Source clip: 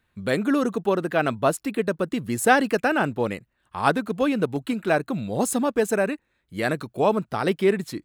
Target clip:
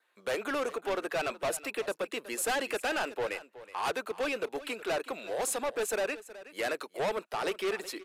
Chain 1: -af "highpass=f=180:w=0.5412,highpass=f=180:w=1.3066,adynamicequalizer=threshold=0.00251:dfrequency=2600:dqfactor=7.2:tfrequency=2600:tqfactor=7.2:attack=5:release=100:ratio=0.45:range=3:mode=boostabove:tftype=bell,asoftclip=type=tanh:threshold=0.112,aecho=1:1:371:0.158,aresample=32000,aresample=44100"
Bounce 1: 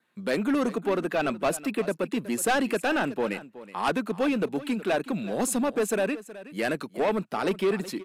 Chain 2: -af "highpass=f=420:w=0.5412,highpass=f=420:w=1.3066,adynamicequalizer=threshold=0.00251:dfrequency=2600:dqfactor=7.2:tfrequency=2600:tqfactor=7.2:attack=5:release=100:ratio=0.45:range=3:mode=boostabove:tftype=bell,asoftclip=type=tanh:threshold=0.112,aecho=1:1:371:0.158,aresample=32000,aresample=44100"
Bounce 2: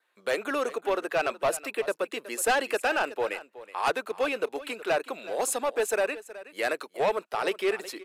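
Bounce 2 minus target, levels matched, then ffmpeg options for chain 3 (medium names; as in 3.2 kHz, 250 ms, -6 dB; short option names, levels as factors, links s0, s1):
saturation: distortion -5 dB
-af "highpass=f=420:w=0.5412,highpass=f=420:w=1.3066,adynamicequalizer=threshold=0.00251:dfrequency=2600:dqfactor=7.2:tfrequency=2600:tqfactor=7.2:attack=5:release=100:ratio=0.45:range=3:mode=boostabove:tftype=bell,asoftclip=type=tanh:threshold=0.0422,aecho=1:1:371:0.158,aresample=32000,aresample=44100"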